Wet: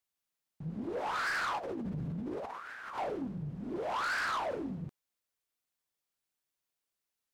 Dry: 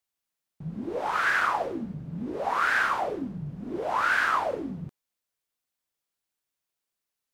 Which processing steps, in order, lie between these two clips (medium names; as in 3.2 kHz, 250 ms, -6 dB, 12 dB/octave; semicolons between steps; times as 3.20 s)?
1.58–2.98 s: compressor with a negative ratio -37 dBFS, ratio -1; saturation -28 dBFS, distortion -8 dB; loudspeaker Doppler distortion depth 0.2 ms; trim -2.5 dB